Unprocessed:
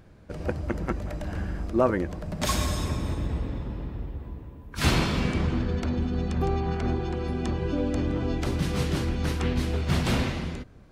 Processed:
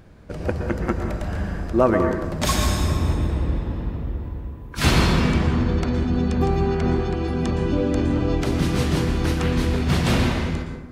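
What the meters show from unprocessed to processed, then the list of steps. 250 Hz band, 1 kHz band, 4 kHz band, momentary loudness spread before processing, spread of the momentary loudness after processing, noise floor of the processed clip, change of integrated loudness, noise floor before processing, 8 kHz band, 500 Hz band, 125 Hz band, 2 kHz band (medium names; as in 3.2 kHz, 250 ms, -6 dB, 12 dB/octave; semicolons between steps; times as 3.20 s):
+6.5 dB, +6.0 dB, +5.0 dB, 11 LU, 10 LU, -36 dBFS, +6.0 dB, -47 dBFS, +5.0 dB, +6.0 dB, +6.0 dB, +5.5 dB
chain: plate-style reverb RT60 1.1 s, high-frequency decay 0.45×, pre-delay 105 ms, DRR 4.5 dB; trim +4.5 dB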